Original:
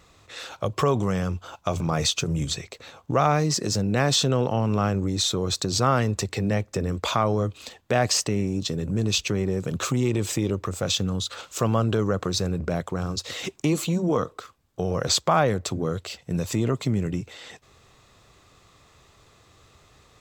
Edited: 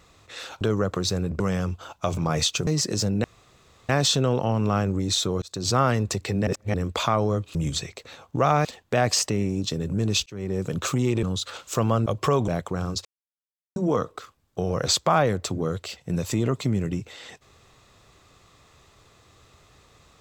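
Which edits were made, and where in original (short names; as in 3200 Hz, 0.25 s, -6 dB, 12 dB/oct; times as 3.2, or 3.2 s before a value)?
0.61–1.03 swap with 11.9–12.69
2.3–3.4 move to 7.63
3.97 insert room tone 0.65 s
5.5–5.78 fade in
6.55–6.82 reverse
9.24–9.57 fade in
10.21–11.07 cut
13.26–13.97 mute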